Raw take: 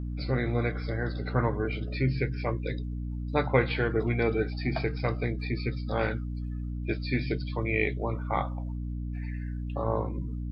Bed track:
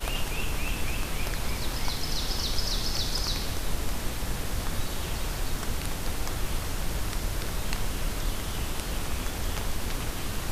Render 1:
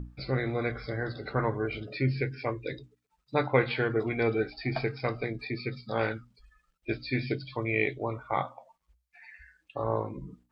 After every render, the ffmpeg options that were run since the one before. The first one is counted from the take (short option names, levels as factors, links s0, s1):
-af "bandreject=f=60:t=h:w=6,bandreject=f=120:t=h:w=6,bandreject=f=180:t=h:w=6,bandreject=f=240:t=h:w=6,bandreject=f=300:t=h:w=6"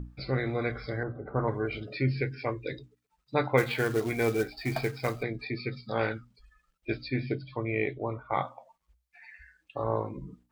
-filter_complex "[0:a]asettb=1/sr,asplit=3[s0][s1][s2];[s0]atrim=end=1.034[s3];[s1]atrim=start=1.03:end=1.48,asetpts=PTS-STARTPTS,afade=t=in:d=0.004:c=qsin,afade=t=out:st=0.446:d=0.004:c=qsin,lowpass=f=1200:w=0.5412,lowpass=f=1200:w=1.3066[s4];[s2]atrim=start=1.476[s5];[s3][s4]acrossfade=d=0.004:c1=hsin:c2=qsin[s6];[s6][s5]acrossfade=d=0.004:c1=qsin:c2=hsin,asplit=3[s7][s8][s9];[s7]afade=t=out:st=3.57:d=0.02[s10];[s8]acrusher=bits=4:mode=log:mix=0:aa=0.000001,afade=t=in:st=3.57:d=0.02,afade=t=out:st=5.21:d=0.02[s11];[s9]afade=t=in:st=5.21:d=0.02[s12];[s10][s11][s12]amix=inputs=3:normalize=0,asettb=1/sr,asplit=3[s13][s14][s15];[s13]atrim=end=7.084[s16];[s14]atrim=start=7.08:end=8.31,asetpts=PTS-STARTPTS,afade=t=in:d=0.004:c=qsin,afade=t=out:st=1.226:d=0.004:c=qsin,highshelf=f=2700:g=-11.5[s17];[s15]atrim=start=8.306[s18];[s16][s17]acrossfade=d=0.004:c1=hsin:c2=qsin[s19];[s19][s18]acrossfade=d=0.004:c1=qsin:c2=hsin"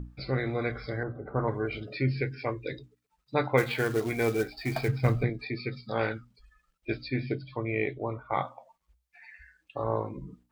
-filter_complex "[0:a]asettb=1/sr,asplit=3[s0][s1][s2];[s0]atrim=end=4.884[s3];[s1]atrim=start=4.88:end=5.3,asetpts=PTS-STARTPTS,afade=t=in:d=0.004:c=qsin,afade=t=out:st=0.416:d=0.004:c=qsin,bass=f=250:g=13,treble=f=4000:g=-7[s4];[s2]atrim=start=5.296[s5];[s3][s4]acrossfade=d=0.004:c1=hsin:c2=qsin[s6];[s6][s5]acrossfade=d=0.004:c1=qsin:c2=hsin"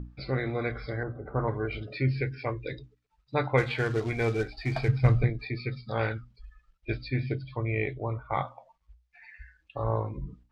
-af "lowpass=5300,asubboost=boost=4:cutoff=110"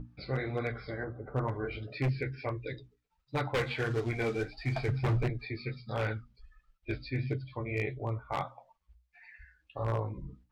-af "flanger=delay=6.6:depth=7.3:regen=-24:speed=1.5:shape=triangular,aeval=exprs='0.0708*(abs(mod(val(0)/0.0708+3,4)-2)-1)':c=same"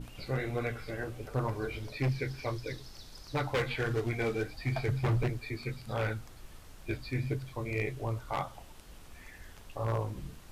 -filter_complex "[1:a]volume=0.0891[s0];[0:a][s0]amix=inputs=2:normalize=0"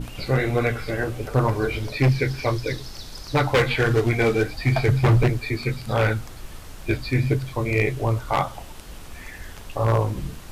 -af "volume=3.98"